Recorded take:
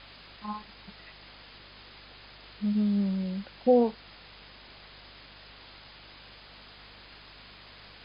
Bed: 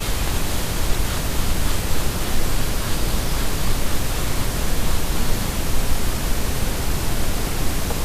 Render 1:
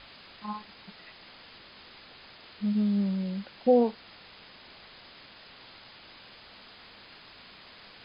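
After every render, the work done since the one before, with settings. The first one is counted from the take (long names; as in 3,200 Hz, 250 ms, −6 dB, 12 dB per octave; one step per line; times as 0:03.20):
hum removal 50 Hz, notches 3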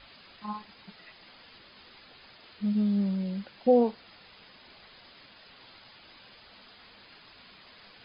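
broadband denoise 6 dB, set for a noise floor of −52 dBFS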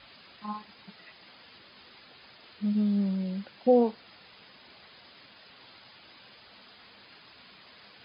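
high-pass filter 72 Hz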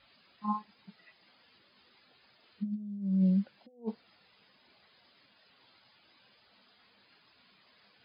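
compressor whose output falls as the input rises −31 dBFS, ratio −0.5
every bin expanded away from the loudest bin 1.5 to 1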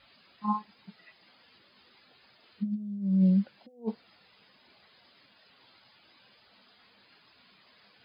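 level +3.5 dB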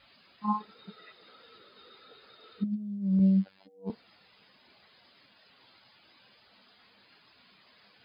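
0:00.60–0:02.64: hollow resonant body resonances 450/1,300/3,700 Hz, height 16 dB, ringing for 30 ms
0:03.19–0:03.90: phases set to zero 96 Hz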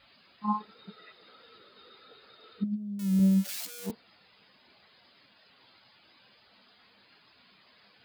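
0:02.99–0:03.91: spike at every zero crossing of −27 dBFS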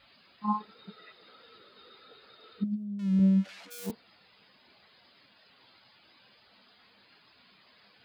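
0:02.84–0:03.70: low-pass filter 3,700 Hz → 2,200 Hz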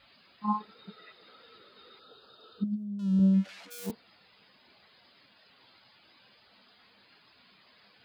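0:01.99–0:03.34: Butterworth band-reject 2,100 Hz, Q 1.8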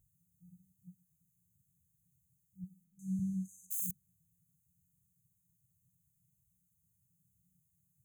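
brick-wall band-stop 190–6,100 Hz
high-shelf EQ 6,200 Hz +11 dB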